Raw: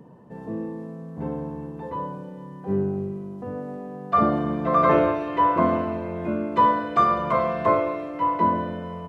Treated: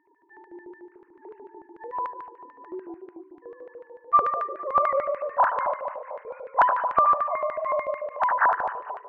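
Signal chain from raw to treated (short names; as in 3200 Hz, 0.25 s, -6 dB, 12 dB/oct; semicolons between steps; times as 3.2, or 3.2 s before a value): sine-wave speech; split-band echo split 960 Hz, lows 0.227 s, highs 90 ms, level -6.5 dB; LFO band-pass square 6.8 Hz 660–1800 Hz; gain +3.5 dB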